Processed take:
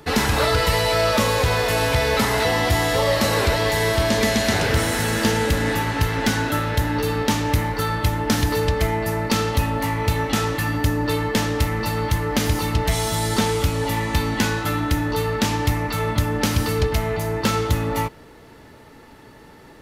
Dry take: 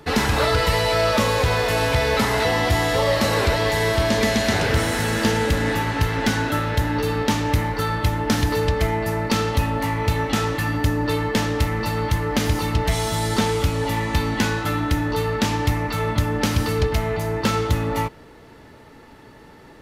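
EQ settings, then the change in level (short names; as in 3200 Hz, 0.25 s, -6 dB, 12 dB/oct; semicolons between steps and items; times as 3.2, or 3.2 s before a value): high shelf 7400 Hz +5.5 dB; 0.0 dB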